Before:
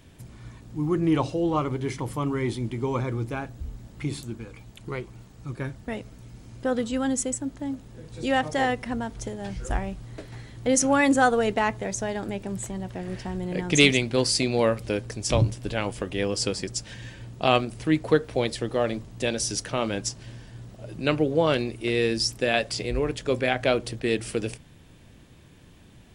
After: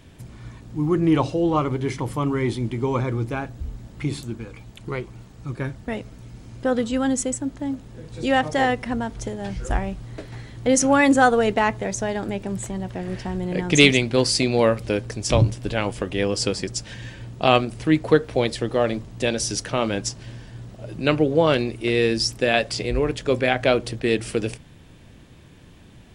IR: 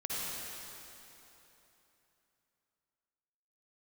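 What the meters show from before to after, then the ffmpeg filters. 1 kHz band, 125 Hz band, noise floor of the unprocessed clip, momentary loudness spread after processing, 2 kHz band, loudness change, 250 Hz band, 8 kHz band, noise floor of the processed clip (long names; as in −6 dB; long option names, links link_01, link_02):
+4.0 dB, +4.0 dB, −51 dBFS, 18 LU, +3.5 dB, +3.5 dB, +4.0 dB, +1.5 dB, −47 dBFS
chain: -af "highshelf=frequency=7600:gain=-5,volume=4dB"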